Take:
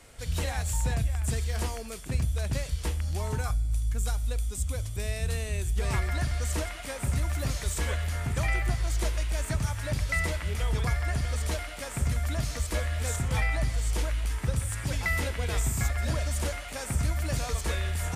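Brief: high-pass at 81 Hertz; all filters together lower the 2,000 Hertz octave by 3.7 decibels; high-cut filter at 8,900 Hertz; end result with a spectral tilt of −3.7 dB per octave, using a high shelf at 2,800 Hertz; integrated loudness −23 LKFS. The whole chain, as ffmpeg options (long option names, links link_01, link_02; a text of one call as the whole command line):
ffmpeg -i in.wav -af "highpass=81,lowpass=8900,equalizer=frequency=2000:width_type=o:gain=-6.5,highshelf=frequency=2800:gain=6,volume=9.5dB" out.wav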